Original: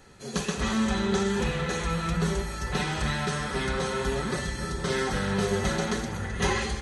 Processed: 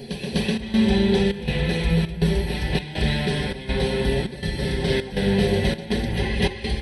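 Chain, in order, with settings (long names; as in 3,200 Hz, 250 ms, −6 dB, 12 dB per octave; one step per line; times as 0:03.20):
phaser with its sweep stopped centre 3,000 Hz, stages 4
backwards echo 250 ms −6.5 dB
gate pattern "xxxxxxx.." 183 BPM −12 dB
level +7 dB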